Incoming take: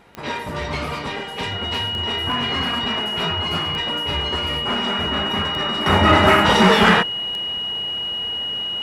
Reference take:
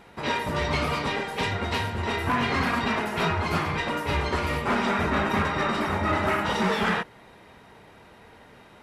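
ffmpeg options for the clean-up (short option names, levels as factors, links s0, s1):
-af "adeclick=t=4,bandreject=f=2900:w=30,asetnsamples=n=441:p=0,asendcmd='5.86 volume volume -11dB',volume=1"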